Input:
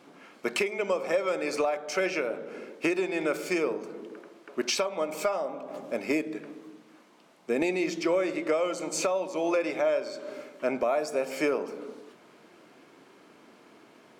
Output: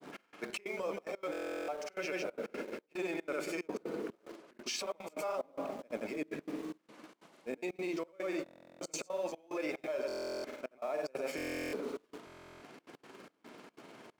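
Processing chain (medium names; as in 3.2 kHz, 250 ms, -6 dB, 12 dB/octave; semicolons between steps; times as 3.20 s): peak limiter -23 dBFS, peak gain reduction 6 dB; reverse; compression 8:1, threshold -39 dBFS, peak gain reduction 12 dB; reverse; granulator, pitch spread up and down by 0 st; in parallel at -7.5 dB: small samples zeroed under -48 dBFS; on the sum: trance gate "xx..xxx.xxxx.x.x" 183 bpm -24 dB; buffer glitch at 1.31/8.44/10.07/11.36/12.25 s, samples 1024, times 15; trim +3 dB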